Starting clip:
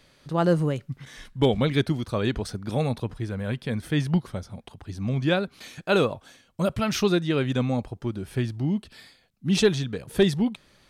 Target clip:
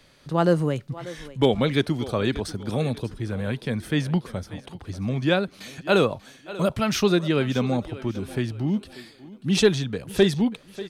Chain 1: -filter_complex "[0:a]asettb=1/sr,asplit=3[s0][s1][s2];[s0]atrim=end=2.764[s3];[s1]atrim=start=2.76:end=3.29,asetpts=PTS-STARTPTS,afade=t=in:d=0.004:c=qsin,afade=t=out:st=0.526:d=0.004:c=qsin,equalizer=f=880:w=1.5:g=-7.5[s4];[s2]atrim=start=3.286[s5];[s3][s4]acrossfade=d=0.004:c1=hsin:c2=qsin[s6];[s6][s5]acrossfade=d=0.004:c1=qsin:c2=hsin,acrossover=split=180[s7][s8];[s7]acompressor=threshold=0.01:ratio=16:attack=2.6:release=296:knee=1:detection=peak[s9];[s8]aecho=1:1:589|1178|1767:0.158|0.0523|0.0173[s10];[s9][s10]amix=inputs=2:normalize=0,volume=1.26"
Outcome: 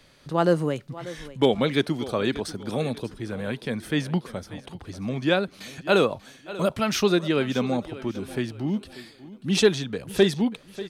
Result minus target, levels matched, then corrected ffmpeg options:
compression: peak gain reduction +10 dB
-filter_complex "[0:a]asettb=1/sr,asplit=3[s0][s1][s2];[s0]atrim=end=2.764[s3];[s1]atrim=start=2.76:end=3.29,asetpts=PTS-STARTPTS,afade=t=in:d=0.004:c=qsin,afade=t=out:st=0.526:d=0.004:c=qsin,equalizer=f=880:w=1.5:g=-7.5[s4];[s2]atrim=start=3.286[s5];[s3][s4]acrossfade=d=0.004:c1=hsin:c2=qsin[s6];[s6][s5]acrossfade=d=0.004:c1=qsin:c2=hsin,acrossover=split=180[s7][s8];[s7]acompressor=threshold=0.0335:ratio=16:attack=2.6:release=296:knee=1:detection=peak[s9];[s8]aecho=1:1:589|1178|1767:0.158|0.0523|0.0173[s10];[s9][s10]amix=inputs=2:normalize=0,volume=1.26"

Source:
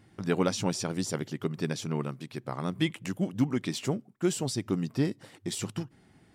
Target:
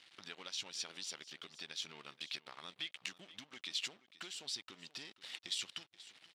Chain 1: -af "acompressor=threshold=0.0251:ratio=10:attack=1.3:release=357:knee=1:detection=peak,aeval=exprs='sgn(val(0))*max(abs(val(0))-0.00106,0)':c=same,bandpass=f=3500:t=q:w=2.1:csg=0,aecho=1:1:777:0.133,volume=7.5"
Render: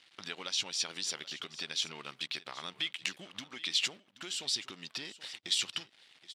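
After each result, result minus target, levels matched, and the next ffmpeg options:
echo 297 ms late; compression: peak gain reduction -7.5 dB
-af "acompressor=threshold=0.0251:ratio=10:attack=1.3:release=357:knee=1:detection=peak,aeval=exprs='sgn(val(0))*max(abs(val(0))-0.00106,0)':c=same,bandpass=f=3500:t=q:w=2.1:csg=0,aecho=1:1:480:0.133,volume=7.5"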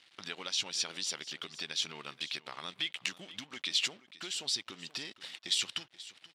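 compression: peak gain reduction -7.5 dB
-af "acompressor=threshold=0.00944:ratio=10:attack=1.3:release=357:knee=1:detection=peak,aeval=exprs='sgn(val(0))*max(abs(val(0))-0.00106,0)':c=same,bandpass=f=3500:t=q:w=2.1:csg=0,aecho=1:1:480:0.133,volume=7.5"

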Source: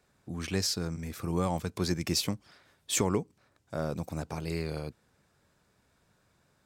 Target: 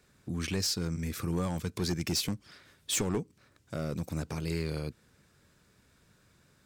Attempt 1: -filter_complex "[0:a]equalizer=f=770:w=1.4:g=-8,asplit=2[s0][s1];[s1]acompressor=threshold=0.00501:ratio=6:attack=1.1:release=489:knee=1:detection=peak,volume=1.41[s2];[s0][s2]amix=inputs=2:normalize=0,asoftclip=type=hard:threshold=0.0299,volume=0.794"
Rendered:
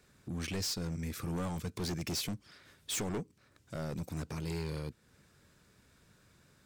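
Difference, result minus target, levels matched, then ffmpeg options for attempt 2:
compression: peak gain reduction +9 dB; hard clipper: distortion +7 dB
-filter_complex "[0:a]equalizer=f=770:w=1.4:g=-8,asplit=2[s0][s1];[s1]acompressor=threshold=0.0168:ratio=6:attack=1.1:release=489:knee=1:detection=peak,volume=1.41[s2];[s0][s2]amix=inputs=2:normalize=0,asoftclip=type=hard:threshold=0.075,volume=0.794"

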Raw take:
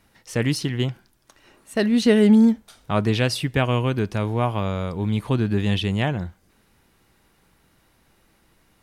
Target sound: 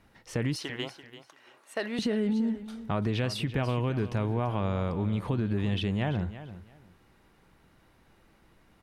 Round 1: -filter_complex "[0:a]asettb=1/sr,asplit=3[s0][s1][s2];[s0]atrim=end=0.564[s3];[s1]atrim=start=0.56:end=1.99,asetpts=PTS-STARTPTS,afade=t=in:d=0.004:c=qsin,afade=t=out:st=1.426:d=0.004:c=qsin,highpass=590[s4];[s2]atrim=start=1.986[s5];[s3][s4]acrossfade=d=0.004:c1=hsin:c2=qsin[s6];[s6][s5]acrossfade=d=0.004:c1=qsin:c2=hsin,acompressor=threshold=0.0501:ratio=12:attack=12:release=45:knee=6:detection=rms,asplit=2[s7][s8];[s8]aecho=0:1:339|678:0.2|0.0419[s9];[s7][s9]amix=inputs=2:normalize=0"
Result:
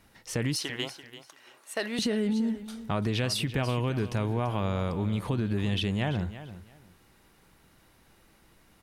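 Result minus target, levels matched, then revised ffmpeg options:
8 kHz band +7.5 dB
-filter_complex "[0:a]asettb=1/sr,asplit=3[s0][s1][s2];[s0]atrim=end=0.564[s3];[s1]atrim=start=0.56:end=1.99,asetpts=PTS-STARTPTS,afade=t=in:d=0.004:c=qsin,afade=t=out:st=1.426:d=0.004:c=qsin,highpass=590[s4];[s2]atrim=start=1.986[s5];[s3][s4]acrossfade=d=0.004:c1=hsin:c2=qsin[s6];[s6][s5]acrossfade=d=0.004:c1=qsin:c2=hsin,acompressor=threshold=0.0501:ratio=12:attack=12:release=45:knee=6:detection=rms,highshelf=f=4200:g=-11,asplit=2[s7][s8];[s8]aecho=0:1:339|678:0.2|0.0419[s9];[s7][s9]amix=inputs=2:normalize=0"

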